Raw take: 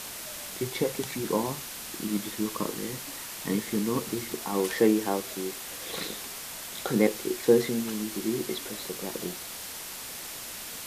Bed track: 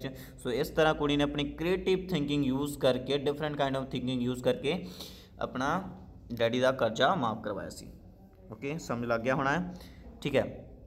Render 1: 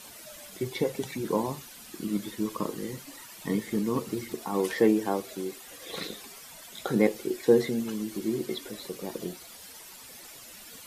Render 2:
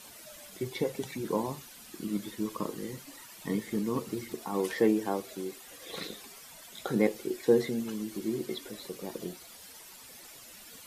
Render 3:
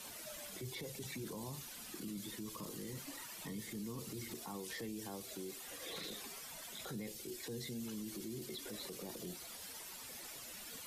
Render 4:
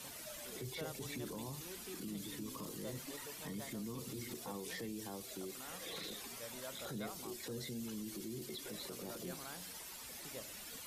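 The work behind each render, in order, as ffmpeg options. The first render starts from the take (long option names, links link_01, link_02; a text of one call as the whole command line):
ffmpeg -i in.wav -af "afftdn=noise_reduction=12:noise_floor=-40" out.wav
ffmpeg -i in.wav -af "volume=-3dB" out.wav
ffmpeg -i in.wav -filter_complex "[0:a]acrossover=split=150|3000[link_01][link_02][link_03];[link_02]acompressor=threshold=-41dB:ratio=6[link_04];[link_01][link_04][link_03]amix=inputs=3:normalize=0,alimiter=level_in=12.5dB:limit=-24dB:level=0:latency=1:release=13,volume=-12.5dB" out.wav
ffmpeg -i in.wav -i bed.wav -filter_complex "[1:a]volume=-23.5dB[link_01];[0:a][link_01]amix=inputs=2:normalize=0" out.wav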